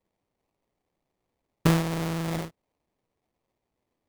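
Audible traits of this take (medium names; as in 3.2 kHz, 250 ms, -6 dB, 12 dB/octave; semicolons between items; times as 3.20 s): phasing stages 12, 0.64 Hz, lowest notch 530–3100 Hz; aliases and images of a low sample rate 1.5 kHz, jitter 20%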